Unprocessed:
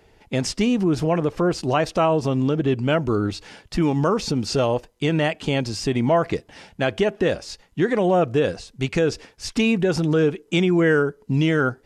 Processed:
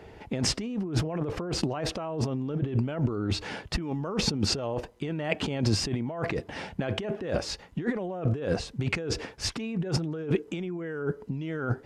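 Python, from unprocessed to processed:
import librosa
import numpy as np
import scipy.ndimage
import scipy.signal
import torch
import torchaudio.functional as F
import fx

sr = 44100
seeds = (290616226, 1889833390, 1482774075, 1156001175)

y = scipy.signal.sosfilt(scipy.signal.butter(2, 48.0, 'highpass', fs=sr, output='sos'), x)
y = fx.high_shelf(y, sr, hz=3400.0, db=-11.5)
y = fx.over_compress(y, sr, threshold_db=-30.0, ratio=-1.0)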